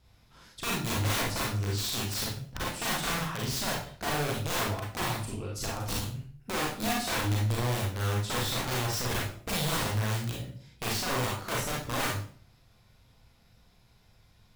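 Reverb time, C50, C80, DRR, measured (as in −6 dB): 0.50 s, 2.0 dB, 8.0 dB, −4.5 dB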